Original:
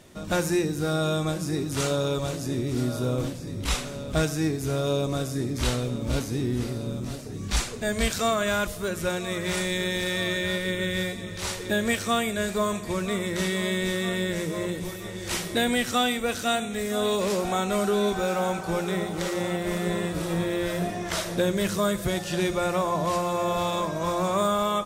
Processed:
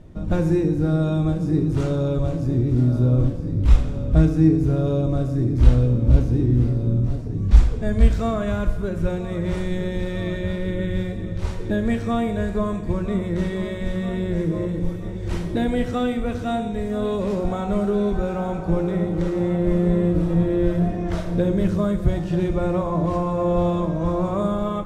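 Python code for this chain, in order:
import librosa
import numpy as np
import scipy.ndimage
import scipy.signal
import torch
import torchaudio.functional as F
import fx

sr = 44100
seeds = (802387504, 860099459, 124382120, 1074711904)

y = fx.tilt_eq(x, sr, slope=-4.5)
y = fx.rev_fdn(y, sr, rt60_s=1.4, lf_ratio=1.0, hf_ratio=0.8, size_ms=19.0, drr_db=7.5)
y = y * 10.0 ** (-3.5 / 20.0)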